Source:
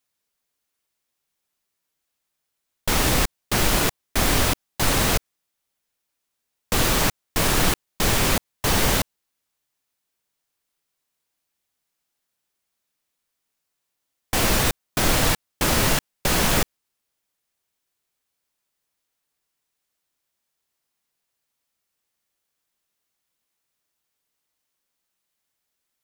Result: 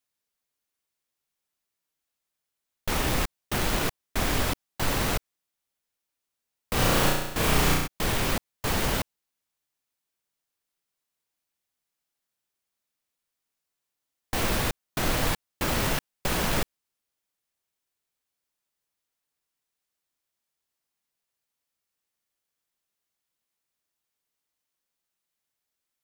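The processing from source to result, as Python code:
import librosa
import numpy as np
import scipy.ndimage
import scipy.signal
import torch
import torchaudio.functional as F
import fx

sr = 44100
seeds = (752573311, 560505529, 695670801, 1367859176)

y = fx.tracing_dist(x, sr, depth_ms=0.17)
y = fx.room_flutter(y, sr, wall_m=5.8, rt60_s=0.91, at=(6.75, 7.86), fade=0.02)
y = y * librosa.db_to_amplitude(-5.5)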